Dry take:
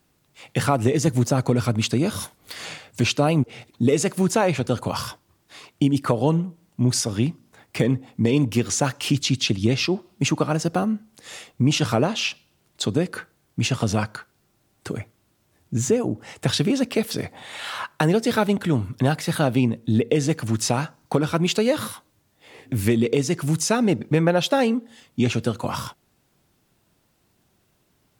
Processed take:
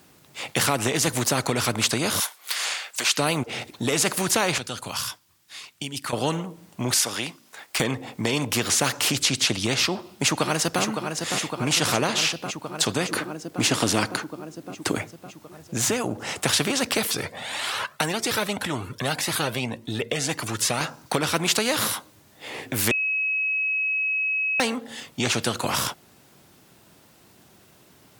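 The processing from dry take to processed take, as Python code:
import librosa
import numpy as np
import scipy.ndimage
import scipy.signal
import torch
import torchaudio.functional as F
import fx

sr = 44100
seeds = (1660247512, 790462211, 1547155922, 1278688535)

y = fx.highpass(x, sr, hz=1100.0, slope=12, at=(2.2, 3.17))
y = fx.tone_stack(y, sr, knobs='5-5-5', at=(4.58, 6.13))
y = fx.highpass(y, sr, hz=1300.0, slope=6, at=(6.94, 7.8))
y = fx.echo_throw(y, sr, start_s=9.89, length_s=0.93, ms=560, feedback_pct=70, wet_db=-10.5)
y = fx.peak_eq(y, sr, hz=300.0, db=14.5, octaves=0.77, at=(13.09, 14.98))
y = fx.comb_cascade(y, sr, direction='rising', hz=1.8, at=(17.07, 20.81))
y = fx.edit(y, sr, fx.bleep(start_s=22.91, length_s=1.69, hz=2560.0, db=-9.5), tone=tone)
y = fx.highpass(y, sr, hz=150.0, slope=6)
y = fx.spectral_comp(y, sr, ratio=2.0)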